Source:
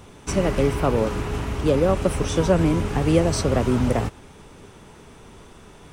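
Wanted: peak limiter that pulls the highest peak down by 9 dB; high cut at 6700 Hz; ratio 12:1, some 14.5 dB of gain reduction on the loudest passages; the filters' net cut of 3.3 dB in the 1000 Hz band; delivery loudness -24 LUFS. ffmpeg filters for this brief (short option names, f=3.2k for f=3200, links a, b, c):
-af "lowpass=6.7k,equalizer=f=1k:t=o:g=-4.5,acompressor=threshold=-29dB:ratio=12,volume=15dB,alimiter=limit=-13dB:level=0:latency=1"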